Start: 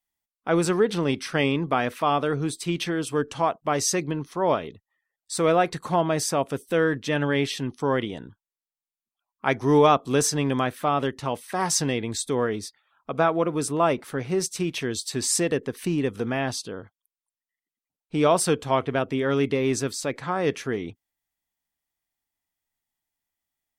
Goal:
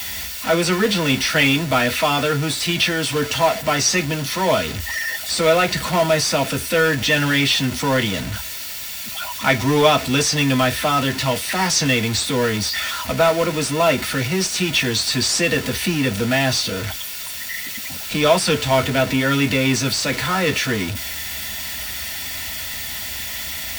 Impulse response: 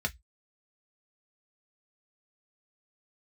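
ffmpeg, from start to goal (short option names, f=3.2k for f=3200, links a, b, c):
-filter_complex "[0:a]aeval=exprs='val(0)+0.5*0.0355*sgn(val(0))':c=same[a];[1:a]atrim=start_sample=2205[b];[a][b]afir=irnorm=-1:irlink=0,crystalizer=i=7.5:c=0,asplit=2[c][d];[d]aeval=exprs='(mod(2.11*val(0)+1,2)-1)/2.11':c=same,volume=-12dB[e];[c][e]amix=inputs=2:normalize=0,acrossover=split=4600[f][g];[g]acompressor=threshold=-24dB:ratio=4:attack=1:release=60[h];[f][h]amix=inputs=2:normalize=0,volume=-5dB"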